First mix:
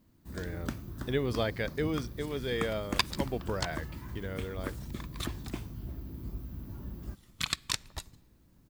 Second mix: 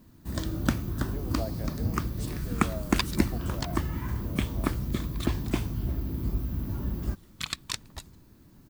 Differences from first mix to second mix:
speech: add resonant band-pass 690 Hz, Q 4.2
first sound +11.0 dB
reverb: off

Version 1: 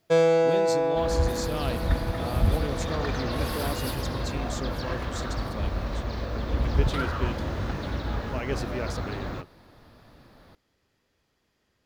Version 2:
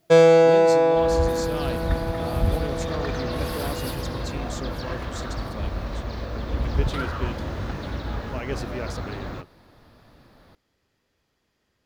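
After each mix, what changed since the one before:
first sound +6.5 dB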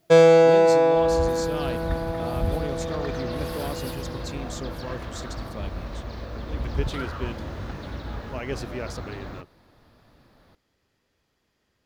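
second sound −4.0 dB

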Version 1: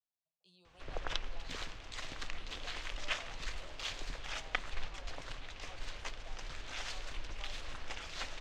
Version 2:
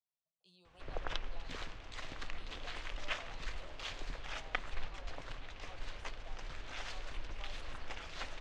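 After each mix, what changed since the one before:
background: add high-shelf EQ 3,700 Hz −8.5 dB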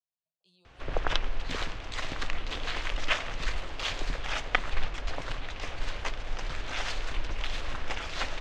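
background +11.0 dB

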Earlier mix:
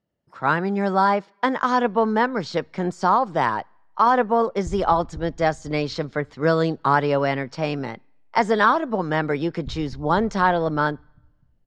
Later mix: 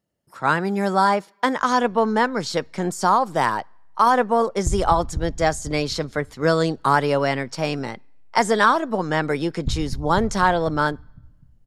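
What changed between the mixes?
background +9.5 dB
master: remove high-frequency loss of the air 150 metres

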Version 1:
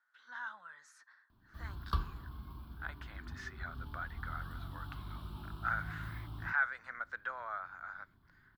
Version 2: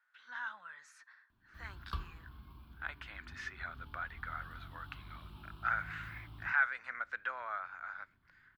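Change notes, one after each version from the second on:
background −6.5 dB
master: add parametric band 2,500 Hz +9.5 dB 0.67 octaves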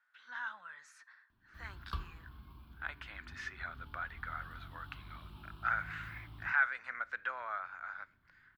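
speech: send +6.0 dB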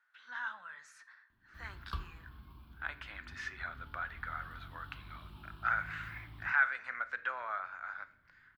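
speech: send +9.5 dB

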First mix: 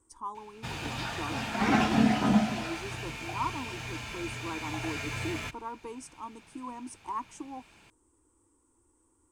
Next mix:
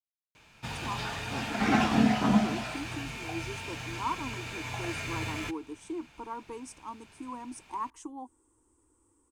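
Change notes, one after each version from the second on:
speech: entry +0.65 s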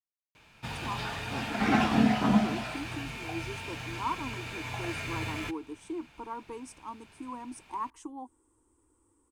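master: add parametric band 6,600 Hz −4 dB 0.76 octaves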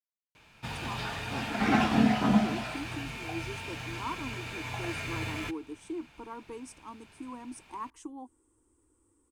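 speech: add parametric band 930 Hz −5.5 dB 0.75 octaves

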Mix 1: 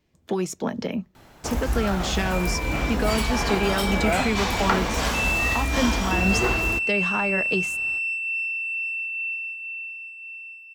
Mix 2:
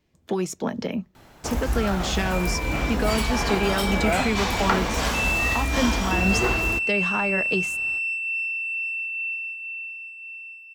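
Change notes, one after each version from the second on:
nothing changed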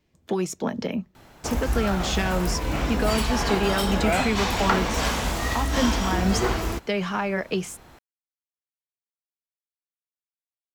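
second sound: muted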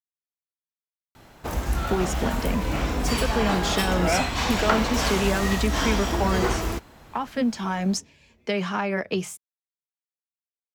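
speech: entry +1.60 s

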